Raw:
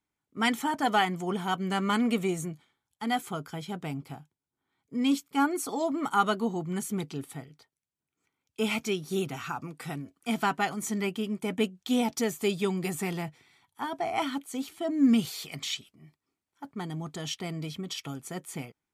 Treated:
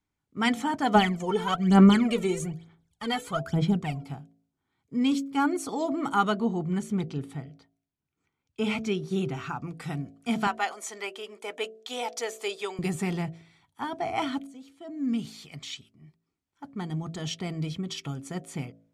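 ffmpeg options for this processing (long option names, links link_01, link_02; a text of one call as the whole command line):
ffmpeg -i in.wav -filter_complex "[0:a]asplit=3[link_01][link_02][link_03];[link_01]afade=type=out:start_time=0.94:duration=0.02[link_04];[link_02]aphaser=in_gain=1:out_gain=1:delay=2.3:decay=0.76:speed=1.1:type=sinusoidal,afade=type=in:start_time=0.94:duration=0.02,afade=type=out:start_time=4.06:duration=0.02[link_05];[link_03]afade=type=in:start_time=4.06:duration=0.02[link_06];[link_04][link_05][link_06]amix=inputs=3:normalize=0,asettb=1/sr,asplit=3[link_07][link_08][link_09];[link_07]atrim=end=6.324[link_10];[link_08]atrim=start=6.32:end=9.67,asetpts=PTS-STARTPTS,afade=type=in:duration=0.004:curve=qsin,afade=type=out:start_time=3.346:duration=0.004:curve=qsin,highshelf=frequency=5200:gain=-7.5[link_11];[link_09]atrim=start=9.666[link_12];[link_10][link_11]acrossfade=duration=0.004:curve1=hsin:curve2=qsin[link_13];[link_13][link_12]acrossfade=duration=0.004:curve1=qsin:curve2=hsin,asettb=1/sr,asplit=3[link_14][link_15][link_16];[link_14]atrim=end=10.474[link_17];[link_15]atrim=start=10.47:end=12.79,asetpts=PTS-STARTPTS,afade=type=in:duration=0.004:curve=qsin,afade=type=out:start_time=2.316:duration=0.004:curve=qsin,highpass=frequency=460:width=0.5412,highpass=frequency=460:width=1.3066[link_18];[link_16]atrim=start=12.786[link_19];[link_17][link_18]acrossfade=duration=0.004:curve1=hsin:curve2=qsin[link_20];[link_20][link_19]acrossfade=duration=0.004:curve1=qsin:curve2=hsin,asplit=2[link_21][link_22];[link_21]atrim=end=14.47,asetpts=PTS-STARTPTS,afade=type=out:start_time=14.466:duration=0.004:curve=hsin:silence=0.141254[link_23];[link_22]atrim=start=14.47,asetpts=PTS-STARTPTS,afade=type=in:duration=2.65:silence=0.141254[link_24];[link_23][link_24]concat=n=2:v=0:a=1,lowpass=8600,lowshelf=frequency=160:gain=11,bandreject=frequency=55.09:width_type=h:width=4,bandreject=frequency=110.18:width_type=h:width=4,bandreject=frequency=165.27:width_type=h:width=4,bandreject=frequency=220.36:width_type=h:width=4,bandreject=frequency=275.45:width_type=h:width=4,bandreject=frequency=330.54:width_type=h:width=4,bandreject=frequency=385.63:width_type=h:width=4,bandreject=frequency=440.72:width_type=h:width=4,bandreject=frequency=495.81:width_type=h:width=4,bandreject=frequency=550.9:width_type=h:width=4,bandreject=frequency=605.99:width_type=h:width=4,bandreject=frequency=661.08:width_type=h:width=4,bandreject=frequency=716.17:width_type=h:width=4" out.wav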